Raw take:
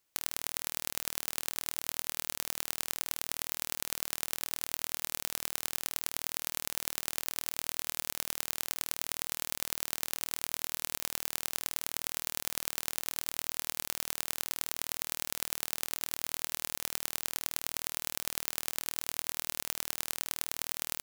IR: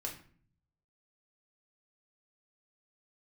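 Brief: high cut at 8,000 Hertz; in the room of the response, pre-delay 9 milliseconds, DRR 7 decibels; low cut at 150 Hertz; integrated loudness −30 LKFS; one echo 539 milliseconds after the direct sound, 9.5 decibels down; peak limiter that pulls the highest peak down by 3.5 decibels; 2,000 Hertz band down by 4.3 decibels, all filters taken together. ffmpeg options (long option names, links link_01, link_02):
-filter_complex "[0:a]highpass=150,lowpass=8000,equalizer=frequency=2000:width_type=o:gain=-5.5,alimiter=limit=-15dB:level=0:latency=1,aecho=1:1:539:0.335,asplit=2[link_01][link_02];[1:a]atrim=start_sample=2205,adelay=9[link_03];[link_02][link_03]afir=irnorm=-1:irlink=0,volume=-6.5dB[link_04];[link_01][link_04]amix=inputs=2:normalize=0,volume=11dB"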